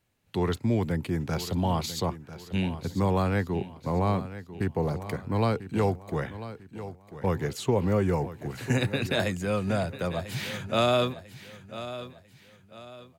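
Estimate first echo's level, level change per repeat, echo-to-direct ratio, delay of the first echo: −13.5 dB, −9.0 dB, −13.0 dB, 995 ms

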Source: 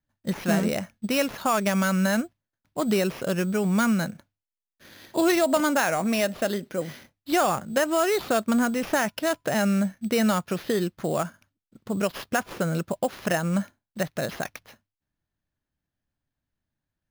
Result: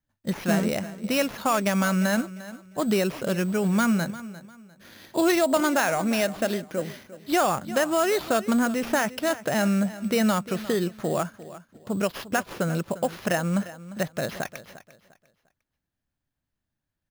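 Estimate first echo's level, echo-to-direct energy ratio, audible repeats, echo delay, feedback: −16.0 dB, −15.5 dB, 2, 350 ms, 28%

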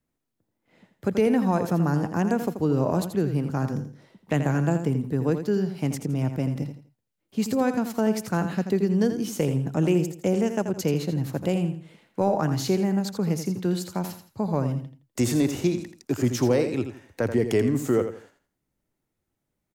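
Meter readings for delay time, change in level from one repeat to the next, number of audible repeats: 83 ms, −11.0 dB, 3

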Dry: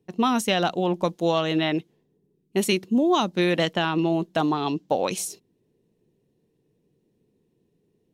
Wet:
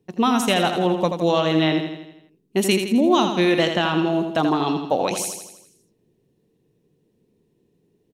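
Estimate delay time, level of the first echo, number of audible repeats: 82 ms, −7.0 dB, 6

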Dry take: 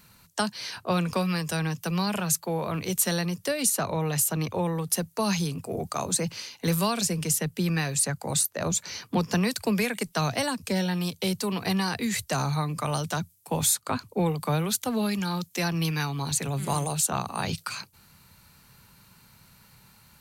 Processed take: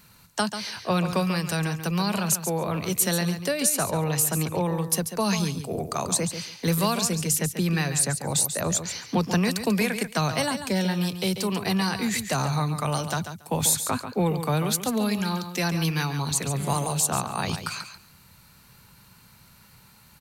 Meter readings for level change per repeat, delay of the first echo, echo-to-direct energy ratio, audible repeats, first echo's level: −16.5 dB, 140 ms, −9.5 dB, 2, −9.5 dB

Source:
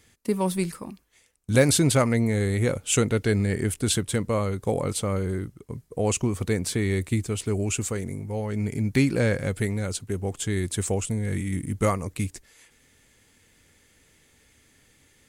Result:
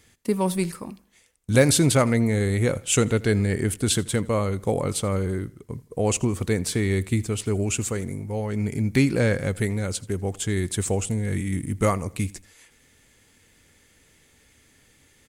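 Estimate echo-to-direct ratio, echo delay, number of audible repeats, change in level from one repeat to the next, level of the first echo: −21.5 dB, 82 ms, 2, −8.0 dB, −22.0 dB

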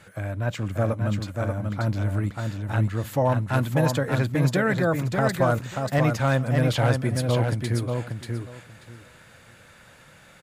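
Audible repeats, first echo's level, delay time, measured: 3, −4.5 dB, 586 ms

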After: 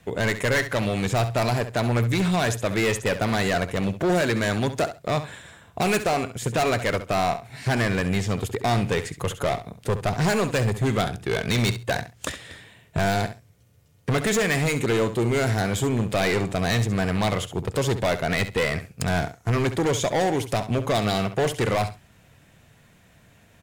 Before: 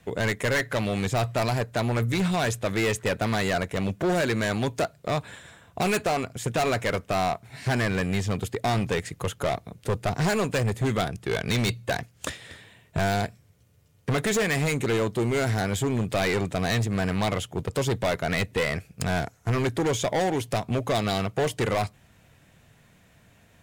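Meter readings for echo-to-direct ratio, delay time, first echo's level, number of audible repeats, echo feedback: −12.0 dB, 67 ms, −12.0 dB, 2, 17%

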